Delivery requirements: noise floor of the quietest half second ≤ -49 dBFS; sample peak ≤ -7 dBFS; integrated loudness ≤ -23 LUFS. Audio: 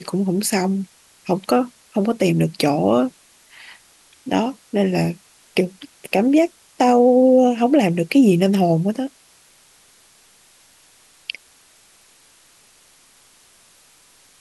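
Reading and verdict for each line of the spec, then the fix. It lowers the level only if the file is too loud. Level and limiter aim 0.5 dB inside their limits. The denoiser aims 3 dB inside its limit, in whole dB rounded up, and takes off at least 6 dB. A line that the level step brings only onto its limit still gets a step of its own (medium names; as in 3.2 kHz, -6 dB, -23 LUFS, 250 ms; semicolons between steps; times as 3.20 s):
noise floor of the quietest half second -53 dBFS: pass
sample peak -5.0 dBFS: fail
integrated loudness -18.5 LUFS: fail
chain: trim -5 dB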